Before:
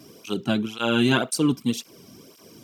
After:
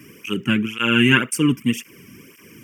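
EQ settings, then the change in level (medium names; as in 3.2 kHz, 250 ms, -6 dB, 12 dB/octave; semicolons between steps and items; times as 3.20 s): high-order bell 2.3 kHz +9.5 dB 1 oct; static phaser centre 1.7 kHz, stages 4; +5.5 dB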